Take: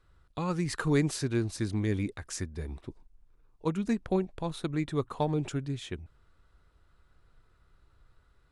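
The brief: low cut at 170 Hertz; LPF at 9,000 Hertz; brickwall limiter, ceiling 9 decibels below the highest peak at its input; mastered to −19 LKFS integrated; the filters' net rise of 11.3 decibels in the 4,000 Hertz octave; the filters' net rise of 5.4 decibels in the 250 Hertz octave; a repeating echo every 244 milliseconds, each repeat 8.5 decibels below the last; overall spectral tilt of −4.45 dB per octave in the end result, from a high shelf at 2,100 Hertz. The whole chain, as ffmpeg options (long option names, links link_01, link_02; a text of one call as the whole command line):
ffmpeg -i in.wav -af "highpass=170,lowpass=9000,equalizer=frequency=250:width_type=o:gain=8.5,highshelf=frequency=2100:gain=6.5,equalizer=frequency=4000:width_type=o:gain=7.5,alimiter=limit=-19dB:level=0:latency=1,aecho=1:1:244|488|732|976:0.376|0.143|0.0543|0.0206,volume=11dB" out.wav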